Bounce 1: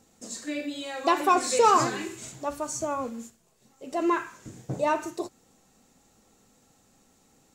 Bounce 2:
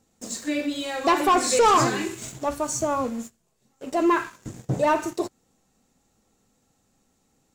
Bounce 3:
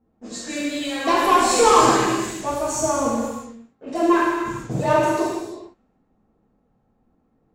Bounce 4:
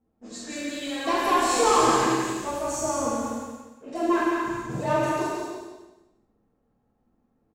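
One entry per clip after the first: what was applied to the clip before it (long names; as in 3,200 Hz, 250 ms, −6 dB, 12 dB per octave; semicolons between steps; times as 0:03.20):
low-shelf EQ 180 Hz +4.5 dB; leveller curve on the samples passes 2; level −2.5 dB
reverb whose tail is shaped and stops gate 490 ms falling, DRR −7.5 dB; low-pass that shuts in the quiet parts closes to 1,100 Hz, open at −20 dBFS; level −4.5 dB
double-tracking delay 46 ms −10.5 dB; on a send: repeating echo 176 ms, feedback 30%, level −4.5 dB; on the sum: level −6.5 dB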